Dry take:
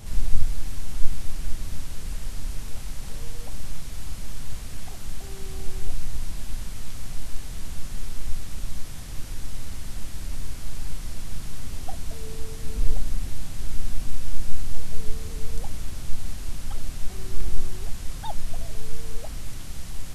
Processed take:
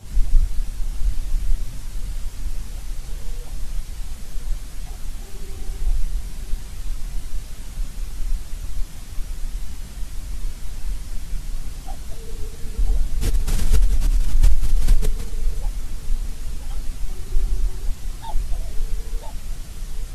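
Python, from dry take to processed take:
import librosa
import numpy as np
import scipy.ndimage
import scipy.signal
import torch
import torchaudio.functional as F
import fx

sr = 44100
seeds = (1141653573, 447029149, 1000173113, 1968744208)

y = fx.phase_scramble(x, sr, seeds[0], window_ms=50)
y = y + 10.0 ** (-9.0 / 20.0) * np.pad(y, (int(991 * sr / 1000.0), 0))[:len(y)]
y = fx.pre_swell(y, sr, db_per_s=29.0, at=(13.21, 15.31))
y = y * librosa.db_to_amplitude(-1.0)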